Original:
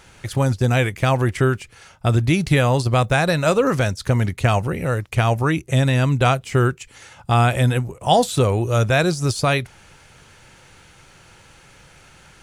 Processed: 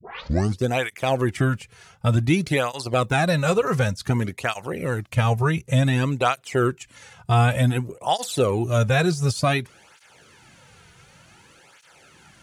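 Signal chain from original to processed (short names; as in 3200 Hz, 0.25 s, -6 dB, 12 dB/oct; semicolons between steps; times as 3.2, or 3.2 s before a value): tape start at the beginning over 0.58 s; tape flanging out of phase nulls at 0.55 Hz, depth 3.8 ms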